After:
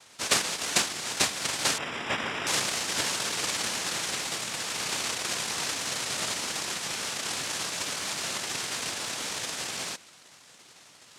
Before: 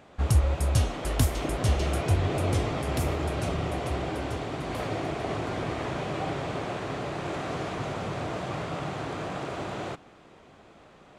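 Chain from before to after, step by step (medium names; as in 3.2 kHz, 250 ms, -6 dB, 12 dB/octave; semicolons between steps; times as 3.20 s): noise-vocoded speech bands 1; 1.78–2.47 s: Savitzky-Golay filter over 25 samples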